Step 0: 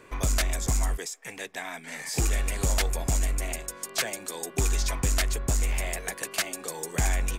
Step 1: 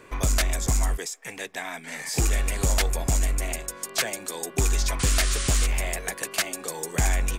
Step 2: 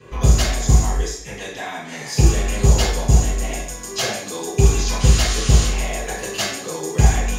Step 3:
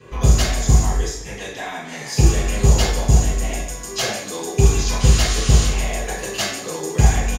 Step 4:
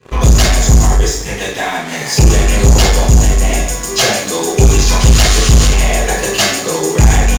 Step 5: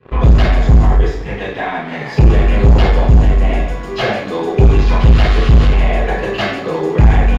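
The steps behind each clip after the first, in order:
painted sound noise, 4.99–5.67, 1000–10000 Hz -34 dBFS; gain +2.5 dB
reverb RT60 0.60 s, pre-delay 3 ms, DRR -10 dB; gain -9 dB
feedback echo 0.172 s, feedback 45%, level -17.5 dB
sample leveller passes 3
air absorption 410 m

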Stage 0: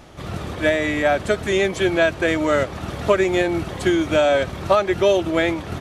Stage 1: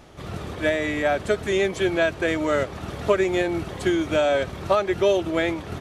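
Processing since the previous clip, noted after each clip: bell 420 Hz +3.5 dB 0.23 oct; gain -4 dB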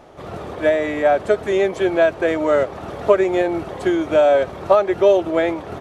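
bell 650 Hz +12 dB 2.5 oct; gain -4.5 dB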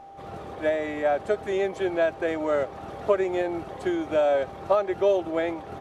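whine 790 Hz -35 dBFS; gain -8 dB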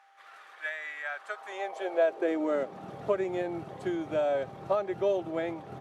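high-pass sweep 1600 Hz -> 130 Hz, 1.09–3.01; gain -6.5 dB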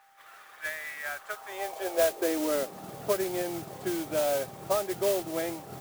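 modulation noise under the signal 10 dB

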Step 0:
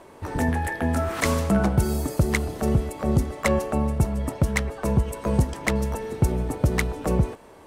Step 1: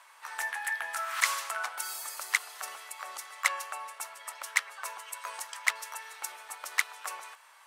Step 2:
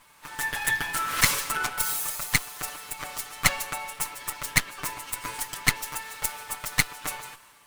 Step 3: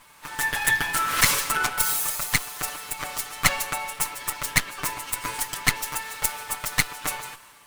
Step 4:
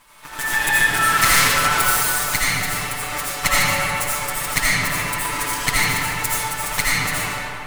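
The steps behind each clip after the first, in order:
HPF 1100 Hz 24 dB/oct
minimum comb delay 6.8 ms; high shelf 9300 Hz +8 dB; AGC gain up to 8.5 dB
maximiser +5 dB; gain -1 dB
digital reverb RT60 2.7 s, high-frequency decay 0.6×, pre-delay 40 ms, DRR -8.5 dB; gain -1 dB

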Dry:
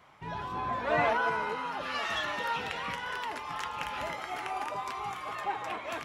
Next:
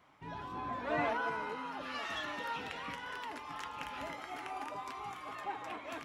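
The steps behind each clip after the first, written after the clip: bell 280 Hz +9.5 dB 0.34 oct; gain -7 dB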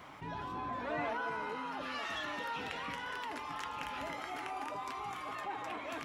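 fast leveller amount 50%; gain -4 dB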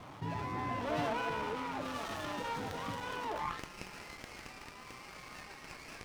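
median filter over 15 samples; high-pass sweep 96 Hz -> 2700 Hz, 3.09–3.62; running maximum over 9 samples; gain +3 dB

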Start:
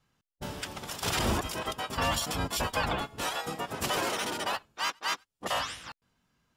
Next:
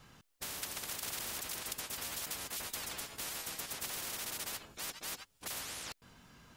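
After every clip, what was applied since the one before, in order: spectral compressor 10:1; gain -3.5 dB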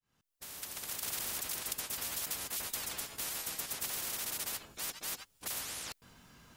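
opening faded in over 1.13 s; high shelf 7700 Hz +5.5 dB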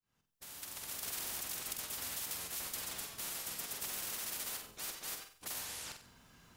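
flutter echo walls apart 8 m, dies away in 0.46 s; gain -4 dB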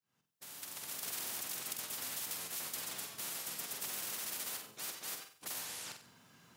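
HPF 110 Hz 24 dB/oct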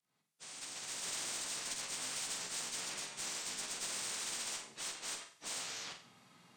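inharmonic rescaling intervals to 87%; added harmonics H 6 -21 dB, 8 -31 dB, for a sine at -29 dBFS; gain +2 dB

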